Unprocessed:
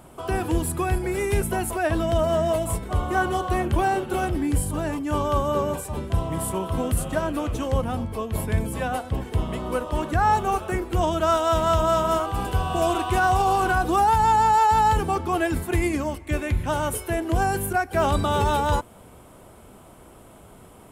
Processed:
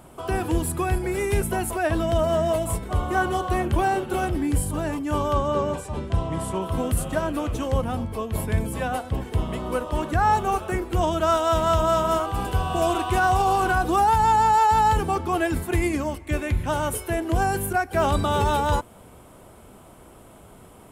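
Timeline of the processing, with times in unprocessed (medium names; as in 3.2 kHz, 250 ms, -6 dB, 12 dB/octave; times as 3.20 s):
5.33–6.62 s: low-pass 7.3 kHz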